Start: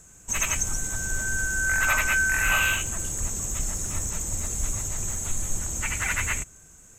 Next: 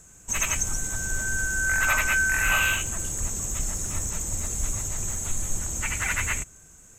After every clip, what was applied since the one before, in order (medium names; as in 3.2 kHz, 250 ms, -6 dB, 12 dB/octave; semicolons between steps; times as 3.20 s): no audible change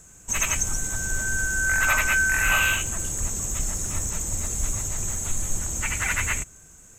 companded quantiser 8-bit; trim +1.5 dB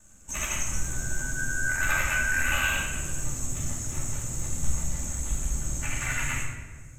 ring modulator 40 Hz; flange 0.4 Hz, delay 3.3 ms, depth 5.3 ms, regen -46%; simulated room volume 1100 m³, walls mixed, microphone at 2.5 m; trim -2.5 dB